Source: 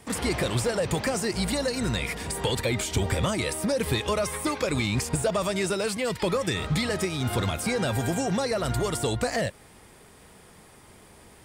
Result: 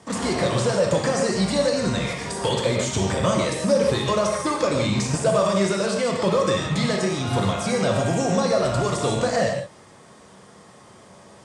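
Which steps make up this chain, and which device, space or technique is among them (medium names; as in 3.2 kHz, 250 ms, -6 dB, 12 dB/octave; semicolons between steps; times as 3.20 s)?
gated-style reverb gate 190 ms flat, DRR 0 dB; car door speaker with a rattle (rattle on loud lows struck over -31 dBFS, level -29 dBFS; cabinet simulation 100–8500 Hz, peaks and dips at 130 Hz +3 dB, 200 Hz +5 dB, 570 Hz +7 dB, 1.1 kHz +6 dB, 2.4 kHz -5 dB, 6.1 kHz +4 dB)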